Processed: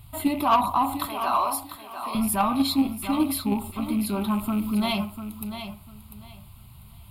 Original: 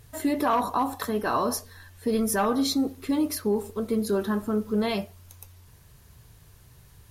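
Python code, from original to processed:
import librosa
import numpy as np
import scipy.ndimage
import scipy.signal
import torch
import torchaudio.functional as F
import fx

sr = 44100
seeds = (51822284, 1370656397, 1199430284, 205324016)

p1 = fx.rattle_buzz(x, sr, strikes_db=-34.0, level_db=-36.0)
p2 = fx.highpass(p1, sr, hz=390.0, slope=24, at=(1.06, 2.15))
p3 = fx.high_shelf(p2, sr, hz=4300.0, db=6.5, at=(4.39, 4.93))
p4 = fx.level_steps(p3, sr, step_db=22)
p5 = p3 + (p4 * librosa.db_to_amplitude(1.0))
p6 = fx.fixed_phaser(p5, sr, hz=1700.0, stages=6)
p7 = 10.0 ** (-15.5 / 20.0) * np.tanh(p6 / 10.0 ** (-15.5 / 20.0))
p8 = p7 + fx.echo_feedback(p7, sr, ms=696, feedback_pct=22, wet_db=-10, dry=0)
y = p8 * librosa.db_to_amplitude(4.0)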